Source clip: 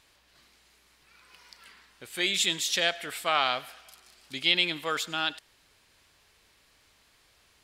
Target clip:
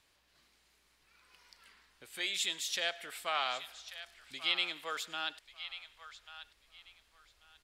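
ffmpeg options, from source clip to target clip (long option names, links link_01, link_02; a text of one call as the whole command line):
ffmpeg -i in.wav -filter_complex "[0:a]asubboost=boost=4.5:cutoff=55,acrossover=split=420|620|7600[link_01][link_02][link_03][link_04];[link_01]acompressor=threshold=-51dB:ratio=6[link_05];[link_03]aecho=1:1:1140|2280|3420:0.251|0.0553|0.0122[link_06];[link_05][link_02][link_06][link_04]amix=inputs=4:normalize=0,volume=-8dB" out.wav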